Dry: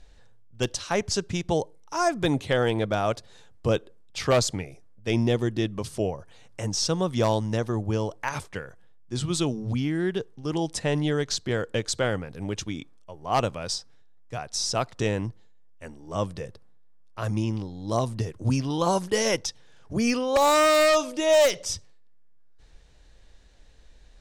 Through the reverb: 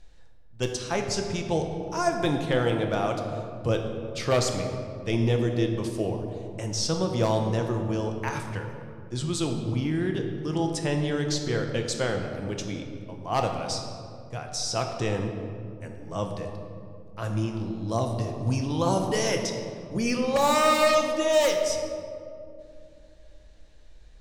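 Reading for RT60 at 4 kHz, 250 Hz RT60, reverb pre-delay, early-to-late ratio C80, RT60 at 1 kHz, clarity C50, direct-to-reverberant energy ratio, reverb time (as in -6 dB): 1.2 s, 3.5 s, 6 ms, 6.5 dB, 2.1 s, 5.5 dB, 3.0 dB, 2.5 s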